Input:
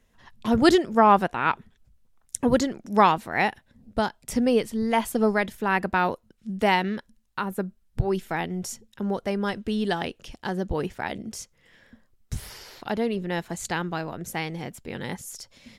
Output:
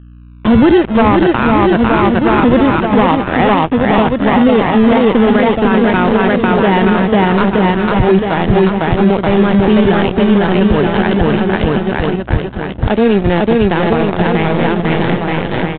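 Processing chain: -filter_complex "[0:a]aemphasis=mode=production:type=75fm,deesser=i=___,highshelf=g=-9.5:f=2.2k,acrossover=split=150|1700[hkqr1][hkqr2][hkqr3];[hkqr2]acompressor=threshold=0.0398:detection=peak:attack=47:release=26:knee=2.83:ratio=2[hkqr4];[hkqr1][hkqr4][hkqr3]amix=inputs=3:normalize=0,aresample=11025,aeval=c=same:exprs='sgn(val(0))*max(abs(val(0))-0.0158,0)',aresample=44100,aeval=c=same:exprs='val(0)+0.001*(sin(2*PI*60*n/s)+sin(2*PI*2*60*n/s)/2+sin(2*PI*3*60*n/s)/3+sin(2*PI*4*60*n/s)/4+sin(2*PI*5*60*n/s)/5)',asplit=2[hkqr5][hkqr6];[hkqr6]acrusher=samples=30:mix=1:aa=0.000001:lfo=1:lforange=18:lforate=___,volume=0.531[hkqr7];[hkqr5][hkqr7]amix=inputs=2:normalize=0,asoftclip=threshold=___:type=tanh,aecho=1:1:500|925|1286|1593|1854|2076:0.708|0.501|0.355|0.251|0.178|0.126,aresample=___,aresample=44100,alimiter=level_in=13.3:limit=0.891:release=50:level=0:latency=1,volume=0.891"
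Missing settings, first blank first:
0.7, 0.21, 0.158, 8000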